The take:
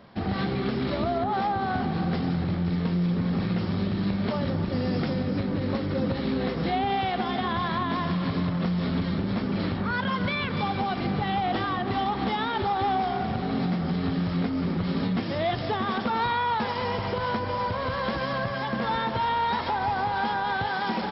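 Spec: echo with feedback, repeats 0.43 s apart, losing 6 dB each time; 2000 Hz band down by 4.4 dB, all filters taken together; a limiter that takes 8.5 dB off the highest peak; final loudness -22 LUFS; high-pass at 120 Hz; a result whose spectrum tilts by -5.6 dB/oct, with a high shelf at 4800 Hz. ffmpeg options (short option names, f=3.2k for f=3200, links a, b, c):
-af "highpass=120,equalizer=f=2k:t=o:g=-5,highshelf=f=4.8k:g=-6.5,alimiter=level_in=0.5dB:limit=-24dB:level=0:latency=1,volume=-0.5dB,aecho=1:1:430|860|1290|1720|2150|2580:0.501|0.251|0.125|0.0626|0.0313|0.0157,volume=9dB"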